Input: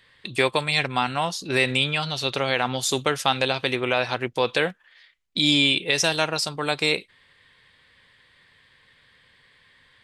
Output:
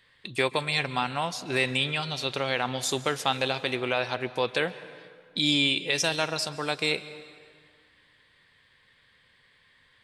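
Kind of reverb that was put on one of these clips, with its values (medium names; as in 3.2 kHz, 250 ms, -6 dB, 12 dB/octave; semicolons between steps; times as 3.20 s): plate-style reverb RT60 2 s, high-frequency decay 0.75×, pre-delay 120 ms, DRR 15 dB; trim -4.5 dB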